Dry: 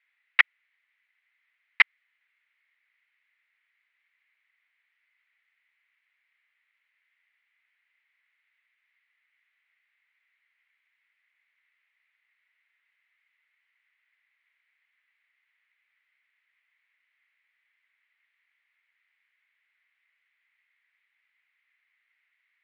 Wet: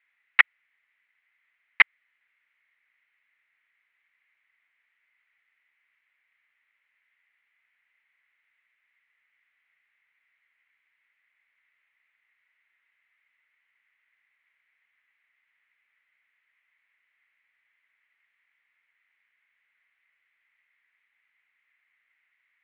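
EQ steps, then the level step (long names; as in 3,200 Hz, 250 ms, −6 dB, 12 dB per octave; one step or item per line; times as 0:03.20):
high-frequency loss of the air 270 metres
+4.5 dB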